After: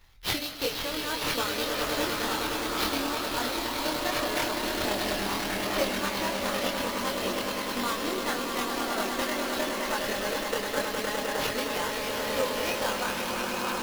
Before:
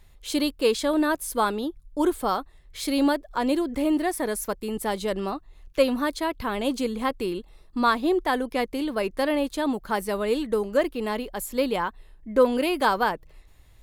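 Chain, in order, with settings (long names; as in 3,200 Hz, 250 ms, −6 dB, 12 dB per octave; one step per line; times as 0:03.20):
downward compressor 2.5 to 1, threshold −29 dBFS, peak gain reduction 10.5 dB
echo that builds up and dies away 103 ms, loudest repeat 8, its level −6 dB
transient designer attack +7 dB, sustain 0 dB
tilt shelving filter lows −6.5 dB, about 1,200 Hz
sample-rate reduction 8,300 Hz, jitter 20%
multi-voice chorus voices 4, 0.21 Hz, delay 25 ms, depth 1.1 ms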